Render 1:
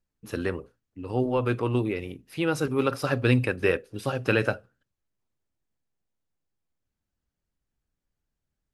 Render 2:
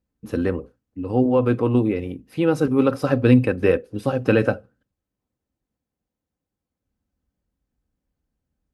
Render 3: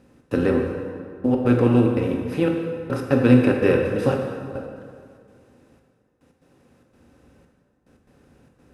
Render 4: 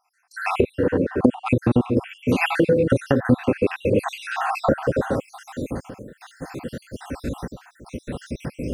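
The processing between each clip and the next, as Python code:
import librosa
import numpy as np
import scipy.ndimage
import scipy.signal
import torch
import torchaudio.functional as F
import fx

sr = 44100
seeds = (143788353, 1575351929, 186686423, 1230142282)

y1 = scipy.signal.sosfilt(scipy.signal.butter(2, 42.0, 'highpass', fs=sr, output='sos'), x)
y1 = fx.tilt_shelf(y1, sr, db=6.0, hz=970.0)
y1 = y1 + 0.33 * np.pad(y1, (int(3.9 * sr / 1000.0), 0))[:len(y1)]
y1 = y1 * 10.0 ** (2.5 / 20.0)
y2 = fx.bin_compress(y1, sr, power=0.6)
y2 = fx.step_gate(y2, sr, bpm=145, pattern='xx.xxxxx....x.xx', floor_db=-60.0, edge_ms=4.5)
y2 = fx.rev_plate(y2, sr, seeds[0], rt60_s=2.1, hf_ratio=0.7, predelay_ms=0, drr_db=1.5)
y2 = y2 * 10.0 ** (-3.5 / 20.0)
y3 = fx.spec_dropout(y2, sr, seeds[1], share_pct=65)
y3 = fx.recorder_agc(y3, sr, target_db=-7.0, rise_db_per_s=31.0, max_gain_db=30)
y3 = y3 * 10.0 ** (-2.0 / 20.0)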